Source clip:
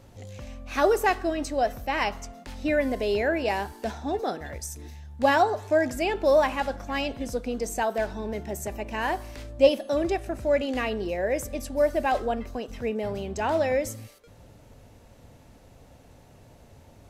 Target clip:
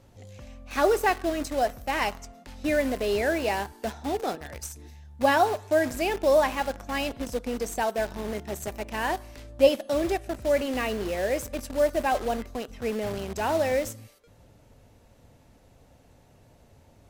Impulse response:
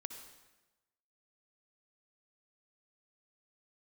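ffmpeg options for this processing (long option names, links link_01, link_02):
-filter_complex "[0:a]asplit=2[link_01][link_02];[link_02]acrusher=bits=4:mix=0:aa=0.000001,volume=-5dB[link_03];[link_01][link_03]amix=inputs=2:normalize=0,volume=-4dB" -ar 44100 -c:a libmp3lame -b:a 80k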